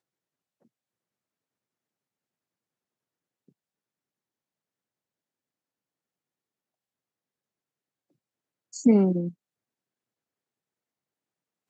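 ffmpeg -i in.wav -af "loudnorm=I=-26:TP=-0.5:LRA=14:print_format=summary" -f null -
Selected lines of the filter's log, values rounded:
Input Integrated:    -22.7 LUFS
Input True Peak:      -9.4 dBTP
Input LRA:             0.7 LU
Input Threshold:     -35.0 LUFS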